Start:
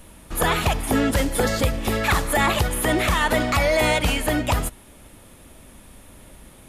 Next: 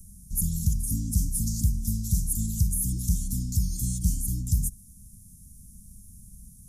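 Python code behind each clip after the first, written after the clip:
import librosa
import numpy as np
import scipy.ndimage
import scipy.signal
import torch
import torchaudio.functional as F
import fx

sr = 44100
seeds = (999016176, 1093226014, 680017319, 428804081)

y = scipy.signal.sosfilt(scipy.signal.cheby1(4, 1.0, [200.0, 5800.0], 'bandstop', fs=sr, output='sos'), x)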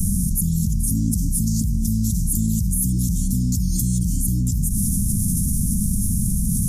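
y = fx.peak_eq(x, sr, hz=200.0, db=7.5, octaves=1.8)
y = fx.env_flatten(y, sr, amount_pct=100)
y = y * librosa.db_to_amplitude(-5.0)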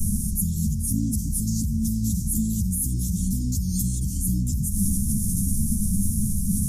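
y = fx.ensemble(x, sr)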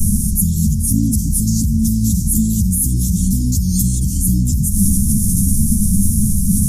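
y = x + 10.0 ** (-22.5 / 20.0) * np.pad(x, (int(660 * sr / 1000.0), 0))[:len(x)]
y = y * librosa.db_to_amplitude(9.0)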